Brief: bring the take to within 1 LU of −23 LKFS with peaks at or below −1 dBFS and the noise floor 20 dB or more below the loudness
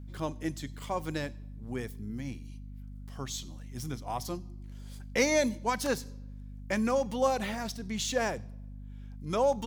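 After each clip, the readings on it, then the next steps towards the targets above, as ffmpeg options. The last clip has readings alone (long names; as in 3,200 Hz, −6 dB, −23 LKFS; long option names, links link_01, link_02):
mains hum 50 Hz; hum harmonics up to 250 Hz; level of the hum −41 dBFS; integrated loudness −32.5 LKFS; sample peak −13.5 dBFS; target loudness −23.0 LKFS
→ -af "bandreject=frequency=50:width_type=h:width=6,bandreject=frequency=100:width_type=h:width=6,bandreject=frequency=150:width_type=h:width=6,bandreject=frequency=200:width_type=h:width=6,bandreject=frequency=250:width_type=h:width=6"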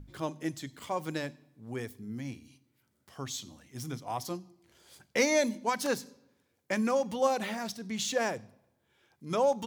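mains hum none found; integrated loudness −33.0 LKFS; sample peak −14.0 dBFS; target loudness −23.0 LKFS
→ -af "volume=10dB"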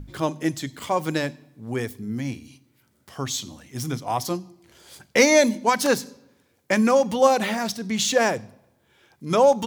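integrated loudness −23.0 LKFS; sample peak −4.0 dBFS; background noise floor −65 dBFS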